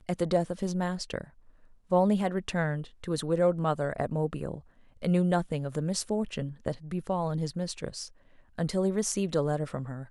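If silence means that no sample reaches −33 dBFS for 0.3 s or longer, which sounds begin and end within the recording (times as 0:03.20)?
0:01.92–0:04.56
0:05.03–0:08.06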